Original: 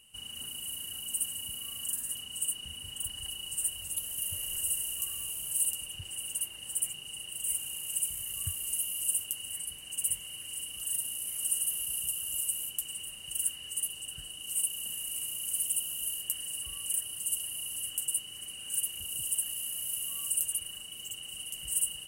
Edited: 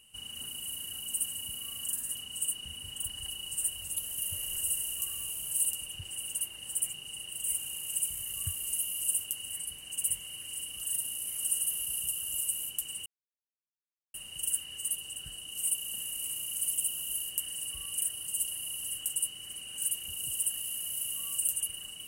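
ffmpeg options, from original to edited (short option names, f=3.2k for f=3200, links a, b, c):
-filter_complex "[0:a]asplit=2[a][b];[a]atrim=end=13.06,asetpts=PTS-STARTPTS,afade=t=out:st=13.056:d=0.004:c=hsin,apad=pad_dur=1.08[c];[b]atrim=start=13.06,asetpts=PTS-STARTPTS,afade=t=in:d=0.004:c=hsin[d];[c][d]concat=n=2:v=0:a=1"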